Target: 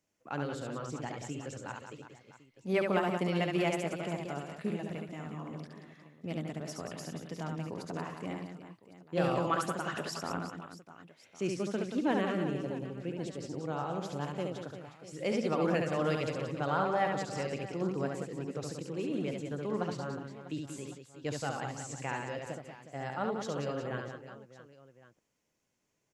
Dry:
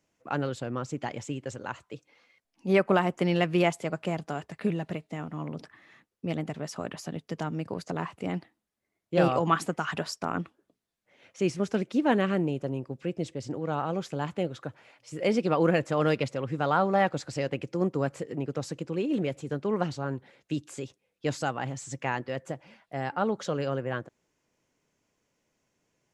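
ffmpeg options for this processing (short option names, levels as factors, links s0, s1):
-filter_complex "[0:a]highshelf=f=6100:g=5,asplit=2[s0][s1];[s1]aecho=0:1:70|182|361.2|647.9|1107:0.631|0.398|0.251|0.158|0.1[s2];[s0][s2]amix=inputs=2:normalize=0,volume=0.422"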